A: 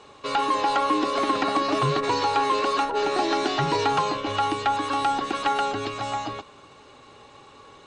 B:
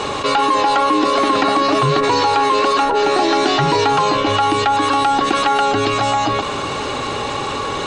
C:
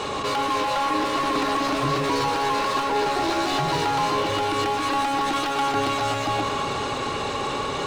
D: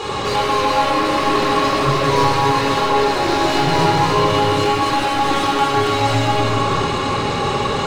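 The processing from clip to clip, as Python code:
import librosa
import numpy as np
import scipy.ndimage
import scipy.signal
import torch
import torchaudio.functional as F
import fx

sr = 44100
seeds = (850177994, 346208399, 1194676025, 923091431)

y1 = fx.env_flatten(x, sr, amount_pct=70)
y1 = y1 * librosa.db_to_amplitude(5.5)
y2 = np.clip(y1, -10.0 ** (-16.5 / 20.0), 10.0 ** (-16.5 / 20.0))
y2 = fx.echo_alternate(y2, sr, ms=123, hz=1100.0, feedback_pct=72, wet_db=-3.5)
y2 = y2 * librosa.db_to_amplitude(-6.0)
y3 = fx.room_shoebox(y2, sr, seeds[0], volume_m3=1700.0, walls='mixed', distance_m=4.0)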